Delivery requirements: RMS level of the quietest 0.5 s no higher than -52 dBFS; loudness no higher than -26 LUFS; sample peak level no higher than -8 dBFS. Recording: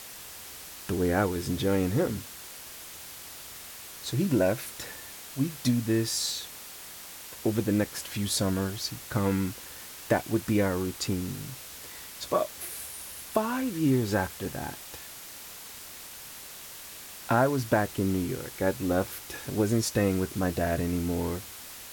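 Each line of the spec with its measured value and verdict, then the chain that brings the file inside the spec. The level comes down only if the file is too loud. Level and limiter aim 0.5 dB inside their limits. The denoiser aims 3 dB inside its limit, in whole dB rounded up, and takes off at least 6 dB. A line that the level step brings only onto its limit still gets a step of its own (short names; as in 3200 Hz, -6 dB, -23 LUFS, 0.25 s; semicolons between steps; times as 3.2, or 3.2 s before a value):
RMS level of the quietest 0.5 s -44 dBFS: fail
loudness -29.0 LUFS: OK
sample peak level -11.5 dBFS: OK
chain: denoiser 11 dB, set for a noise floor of -44 dBFS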